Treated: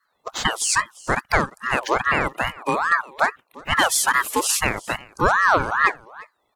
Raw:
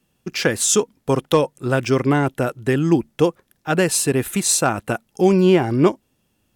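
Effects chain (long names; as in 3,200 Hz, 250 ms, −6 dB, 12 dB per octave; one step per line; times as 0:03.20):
spectral magnitudes quantised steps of 30 dB
0:03.72–0:04.45: leveller curve on the samples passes 1
on a send: single-tap delay 349 ms −21.5 dB
on the sum: ring modulator whose carrier an LFO sweeps 1,100 Hz, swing 40%, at 2.4 Hz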